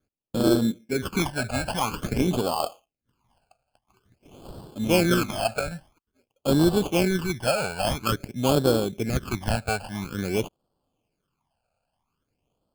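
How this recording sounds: aliases and images of a low sample rate 1900 Hz, jitter 0%; phasing stages 12, 0.49 Hz, lowest notch 330–2200 Hz

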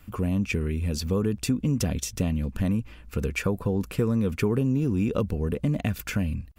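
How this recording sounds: noise floor -47 dBFS; spectral tilt -7.5 dB/oct

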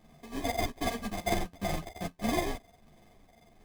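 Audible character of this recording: a buzz of ramps at a fixed pitch in blocks of 64 samples; phasing stages 8, 1.4 Hz, lowest notch 420–1100 Hz; aliases and images of a low sample rate 1400 Hz, jitter 0%; a shimmering, thickened sound

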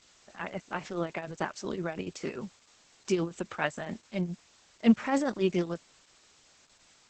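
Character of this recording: tremolo triangle 7.2 Hz, depth 75%; a quantiser's noise floor 10-bit, dither triangular; Opus

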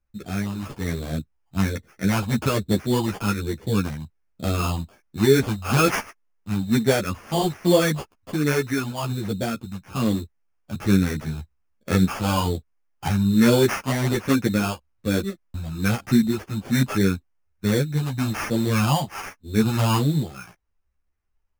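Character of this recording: phasing stages 6, 1.2 Hz, lowest notch 410–1200 Hz; aliases and images of a low sample rate 3900 Hz, jitter 0%; a shimmering, thickened sound

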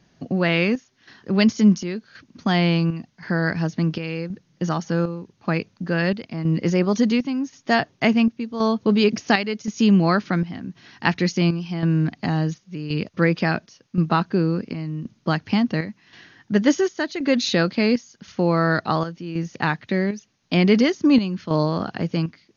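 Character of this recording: chopped level 0.93 Hz, depth 60%, duty 70%; a quantiser's noise floor 12-bit, dither triangular; MP2

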